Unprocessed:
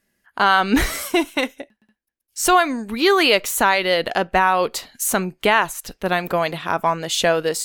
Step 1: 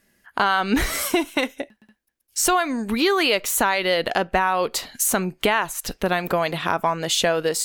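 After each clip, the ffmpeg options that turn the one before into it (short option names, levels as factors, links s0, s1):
-af "acompressor=threshold=0.0398:ratio=2.5,volume=2.11"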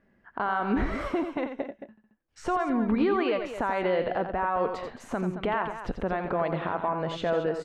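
-filter_complex "[0:a]lowpass=1300,alimiter=limit=0.112:level=0:latency=1:release=250,asplit=2[s0][s1];[s1]aecho=0:1:87.46|221.6:0.398|0.282[s2];[s0][s2]amix=inputs=2:normalize=0,volume=1.12"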